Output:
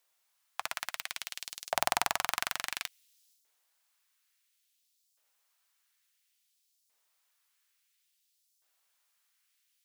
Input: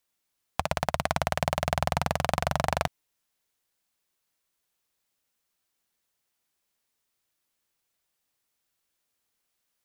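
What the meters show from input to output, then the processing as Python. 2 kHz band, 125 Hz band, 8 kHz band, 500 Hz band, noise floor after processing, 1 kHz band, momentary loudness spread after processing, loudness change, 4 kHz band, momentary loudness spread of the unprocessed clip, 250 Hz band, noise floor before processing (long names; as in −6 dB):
−2.5 dB, −26.0 dB, +2.0 dB, −12.5 dB, −76 dBFS, −7.0 dB, 11 LU, −5.0 dB, 0.0 dB, 5 LU, −17.5 dB, −80 dBFS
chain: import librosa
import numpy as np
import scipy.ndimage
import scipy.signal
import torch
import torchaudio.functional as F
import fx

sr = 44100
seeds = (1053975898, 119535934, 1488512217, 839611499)

y = fx.filter_lfo_highpass(x, sr, shape='saw_up', hz=0.58, low_hz=540.0, high_hz=5500.0, q=1.1)
y = fx.transient(y, sr, attack_db=-9, sustain_db=7)
y = y * 10.0 ** (3.5 / 20.0)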